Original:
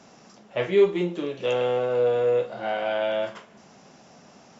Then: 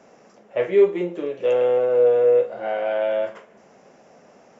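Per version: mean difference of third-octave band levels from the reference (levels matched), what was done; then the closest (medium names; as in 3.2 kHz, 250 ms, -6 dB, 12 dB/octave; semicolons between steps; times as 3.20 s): 5.0 dB: graphic EQ 125/500/2000/4000 Hz -3/+10/+5/-7 dB; trim -4 dB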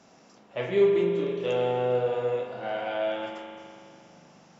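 3.0 dB: spring tank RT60 2.4 s, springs 40 ms, chirp 40 ms, DRR 2 dB; trim -5.5 dB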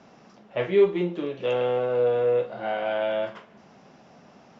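1.5 dB: distance through air 160 m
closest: third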